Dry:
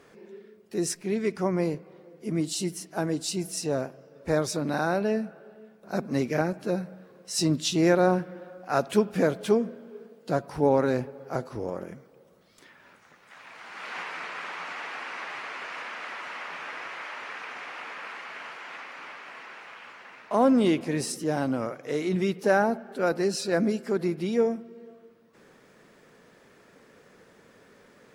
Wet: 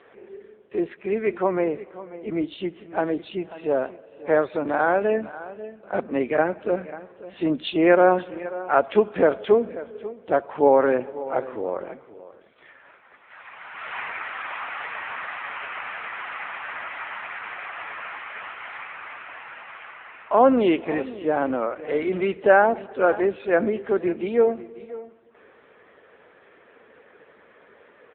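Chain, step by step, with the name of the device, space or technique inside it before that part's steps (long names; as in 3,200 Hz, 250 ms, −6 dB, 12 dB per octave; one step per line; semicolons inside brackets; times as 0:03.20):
satellite phone (band-pass filter 380–3,300 Hz; single-tap delay 539 ms −16.5 dB; level +8 dB; AMR narrowband 6.7 kbit/s 8,000 Hz)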